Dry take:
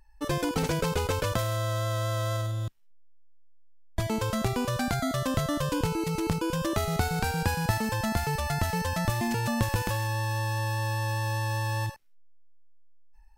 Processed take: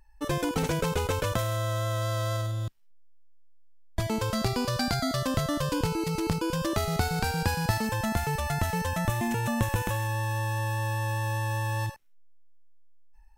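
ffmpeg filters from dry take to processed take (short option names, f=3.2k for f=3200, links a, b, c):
-af "asetnsamples=n=441:p=0,asendcmd='2.02 equalizer g 2;4.35 equalizer g 12;5.22 equalizer g 4;7.87 equalizer g -6.5;8.91 equalizer g -13.5;11.79 equalizer g -4.5',equalizer=f=4.7k:t=o:w=0.26:g=-4"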